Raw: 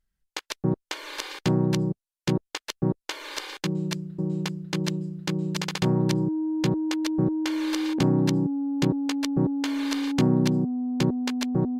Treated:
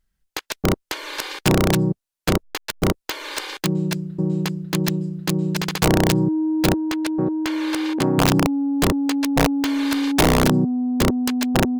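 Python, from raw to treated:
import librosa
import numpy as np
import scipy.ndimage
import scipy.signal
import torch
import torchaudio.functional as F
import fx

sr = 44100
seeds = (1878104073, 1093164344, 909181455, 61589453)

y = fx.delta_hold(x, sr, step_db=-40.5, at=(2.42, 2.84), fade=0.02)
y = fx.bass_treble(y, sr, bass_db=-9, treble_db=-5, at=(6.75, 8.17), fade=0.02)
y = (np.mod(10.0 ** (15.0 / 20.0) * y + 1.0, 2.0) - 1.0) / 10.0 ** (15.0 / 20.0)
y = y * 10.0 ** (6.0 / 20.0)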